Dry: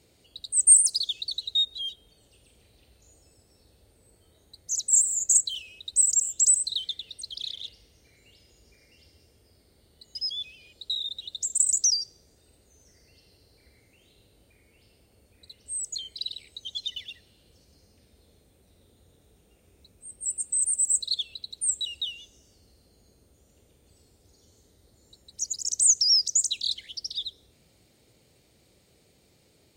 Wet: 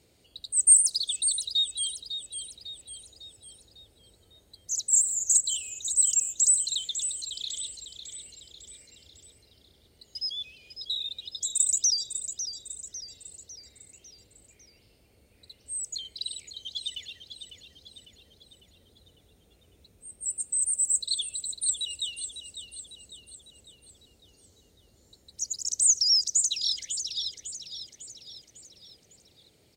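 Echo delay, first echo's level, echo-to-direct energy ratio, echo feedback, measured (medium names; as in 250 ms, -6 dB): 551 ms, -10.0 dB, -9.0 dB, 50%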